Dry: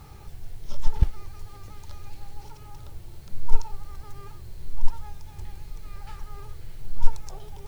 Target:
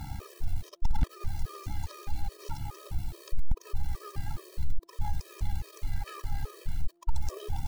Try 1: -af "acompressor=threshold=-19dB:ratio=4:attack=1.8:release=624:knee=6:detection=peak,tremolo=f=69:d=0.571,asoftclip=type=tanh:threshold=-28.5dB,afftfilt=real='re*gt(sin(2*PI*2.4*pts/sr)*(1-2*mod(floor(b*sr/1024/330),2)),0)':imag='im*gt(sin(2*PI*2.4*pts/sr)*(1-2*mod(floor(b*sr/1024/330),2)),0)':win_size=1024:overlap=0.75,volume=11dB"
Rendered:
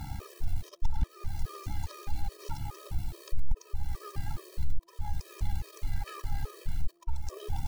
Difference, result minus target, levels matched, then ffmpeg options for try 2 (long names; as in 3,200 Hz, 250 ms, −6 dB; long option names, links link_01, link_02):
downward compressor: peak gain reduction +13 dB
-af "tremolo=f=69:d=0.571,asoftclip=type=tanh:threshold=-28.5dB,afftfilt=real='re*gt(sin(2*PI*2.4*pts/sr)*(1-2*mod(floor(b*sr/1024/330),2)),0)':imag='im*gt(sin(2*PI*2.4*pts/sr)*(1-2*mod(floor(b*sr/1024/330),2)),0)':win_size=1024:overlap=0.75,volume=11dB"